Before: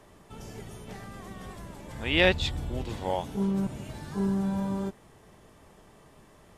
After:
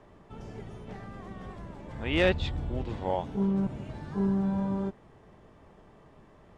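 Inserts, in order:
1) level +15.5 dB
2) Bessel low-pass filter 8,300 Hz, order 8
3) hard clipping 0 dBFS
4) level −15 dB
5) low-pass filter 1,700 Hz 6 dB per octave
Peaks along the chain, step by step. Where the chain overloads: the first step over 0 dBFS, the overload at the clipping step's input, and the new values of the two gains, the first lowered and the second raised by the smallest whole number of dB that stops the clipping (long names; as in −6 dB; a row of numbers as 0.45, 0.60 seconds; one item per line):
+6.0, +6.0, 0.0, −15.0, −15.0 dBFS
step 1, 6.0 dB
step 1 +9.5 dB, step 4 −9 dB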